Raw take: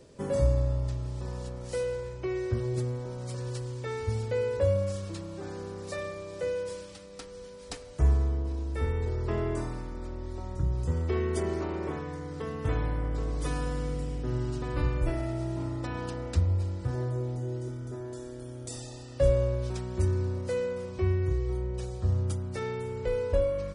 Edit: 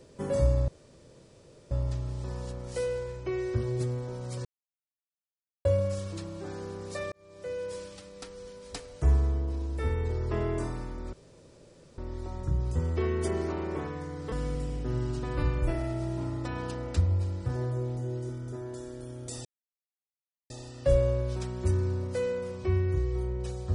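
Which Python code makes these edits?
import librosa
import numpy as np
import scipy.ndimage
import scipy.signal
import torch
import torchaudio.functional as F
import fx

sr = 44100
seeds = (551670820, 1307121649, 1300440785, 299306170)

y = fx.edit(x, sr, fx.insert_room_tone(at_s=0.68, length_s=1.03),
    fx.silence(start_s=3.42, length_s=1.2),
    fx.fade_in_span(start_s=6.09, length_s=0.68),
    fx.insert_room_tone(at_s=10.1, length_s=0.85),
    fx.cut(start_s=12.44, length_s=1.27),
    fx.insert_silence(at_s=18.84, length_s=1.05), tone=tone)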